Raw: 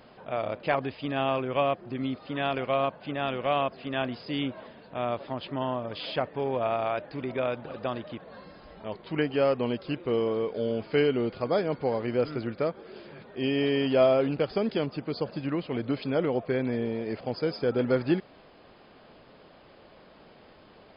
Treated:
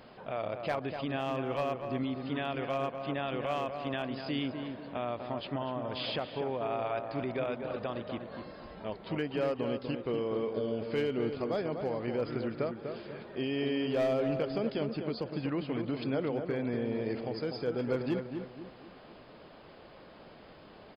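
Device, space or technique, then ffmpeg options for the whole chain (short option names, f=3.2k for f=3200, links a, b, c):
clipper into limiter: -filter_complex "[0:a]asoftclip=type=hard:threshold=-17.5dB,alimiter=level_in=1dB:limit=-24dB:level=0:latency=1:release=239,volume=-1dB,asplit=2[a][b];[b]adelay=246,lowpass=f=1.7k:p=1,volume=-6dB,asplit=2[c][d];[d]adelay=246,lowpass=f=1.7k:p=1,volume=0.41,asplit=2[e][f];[f]adelay=246,lowpass=f=1.7k:p=1,volume=0.41,asplit=2[g][h];[h]adelay=246,lowpass=f=1.7k:p=1,volume=0.41,asplit=2[i][j];[j]adelay=246,lowpass=f=1.7k:p=1,volume=0.41[k];[a][c][e][g][i][k]amix=inputs=6:normalize=0"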